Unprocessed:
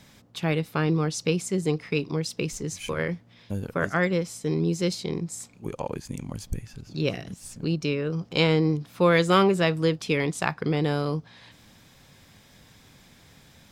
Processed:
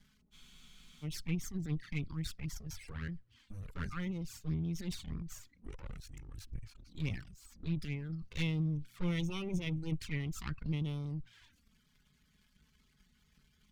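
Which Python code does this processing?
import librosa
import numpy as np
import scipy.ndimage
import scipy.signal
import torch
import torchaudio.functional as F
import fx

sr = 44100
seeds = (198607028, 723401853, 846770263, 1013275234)

y = np.maximum(x, 0.0)
y = fx.high_shelf(y, sr, hz=3100.0, db=-10.0)
y = fx.transient(y, sr, attack_db=-7, sustain_db=7)
y = fx.dereverb_blind(y, sr, rt60_s=0.66)
y = fx.env_flanger(y, sr, rest_ms=5.1, full_db=-25.0)
y = fx.tone_stack(y, sr, knobs='6-0-2')
y = fx.formant_shift(y, sr, semitones=-2)
y = fx.transient(y, sr, attack_db=7, sustain_db=2)
y = fx.spec_freeze(y, sr, seeds[0], at_s=0.34, hold_s=0.69)
y = F.gain(torch.from_numpy(y), 11.5).numpy()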